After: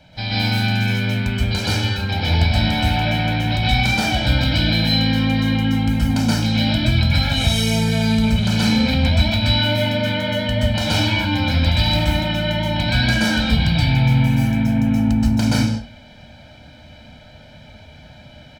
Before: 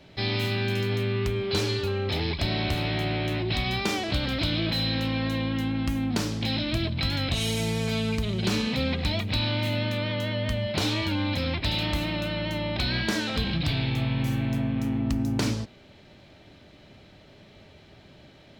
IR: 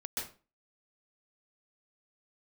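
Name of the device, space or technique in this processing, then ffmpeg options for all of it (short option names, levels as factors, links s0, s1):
microphone above a desk: -filter_complex "[0:a]aecho=1:1:1.3:0.85[s0];[1:a]atrim=start_sample=2205[s1];[s0][s1]afir=irnorm=-1:irlink=0,volume=1.68"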